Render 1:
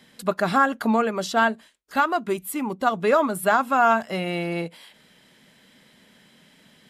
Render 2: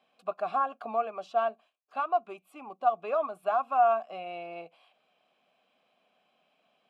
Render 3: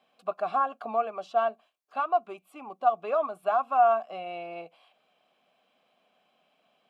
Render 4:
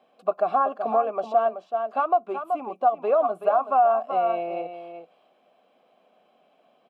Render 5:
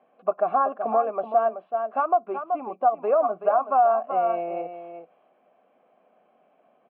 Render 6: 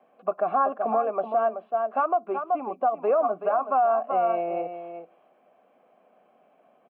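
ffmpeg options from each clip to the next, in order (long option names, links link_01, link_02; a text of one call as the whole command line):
ffmpeg -i in.wav -filter_complex "[0:a]asplit=3[link_01][link_02][link_03];[link_01]bandpass=frequency=730:width_type=q:width=8,volume=0dB[link_04];[link_02]bandpass=frequency=1090:width_type=q:width=8,volume=-6dB[link_05];[link_03]bandpass=frequency=2440:width_type=q:width=8,volume=-9dB[link_06];[link_04][link_05][link_06]amix=inputs=3:normalize=0" out.wav
ffmpeg -i in.wav -af "bandreject=frequency=2500:width=25,volume=2dB" out.wav
ffmpeg -i in.wav -af "equalizer=frequency=440:width_type=o:width=2.9:gain=13,aecho=1:1:378:0.335,acompressor=threshold=-15dB:ratio=3,volume=-2.5dB" out.wav
ffmpeg -i in.wav -af "lowpass=frequency=2300:width=0.5412,lowpass=frequency=2300:width=1.3066" out.wav
ffmpeg -i in.wav -filter_complex "[0:a]acrossover=split=360|1400[link_01][link_02][link_03];[link_01]aecho=1:1:151:0.0944[link_04];[link_02]alimiter=limit=-19dB:level=0:latency=1:release=74[link_05];[link_04][link_05][link_03]amix=inputs=3:normalize=0,volume=1.5dB" out.wav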